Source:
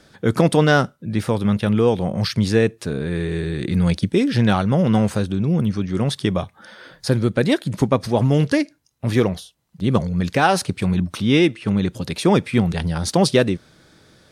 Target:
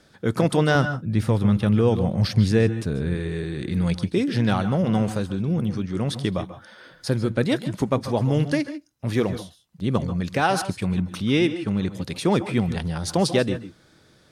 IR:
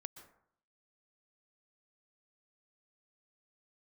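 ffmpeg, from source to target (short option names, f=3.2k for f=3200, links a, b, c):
-filter_complex "[0:a]asettb=1/sr,asplit=3[a][b][c];[a]atrim=end=0.754[d];[b]atrim=start=0.75:end=3.15,asetpts=PTS-STARTPTS,afade=t=in:d=0.004:c=qsin,afade=t=out:st=2.396:d=0.004:c=qsin,lowshelf=f=130:g=11.5[e];[c]atrim=start=3.146[f];[d][e]acrossfade=d=0.004:c1=hsin:c2=qsin[g];[g][f]acrossfade=d=0.004:c1=qsin:c2=hsin[h];[1:a]atrim=start_sample=2205,afade=t=out:st=0.19:d=0.01,atrim=end_sample=8820,asetrate=39249,aresample=44100[i];[h][i]afir=irnorm=-1:irlink=0"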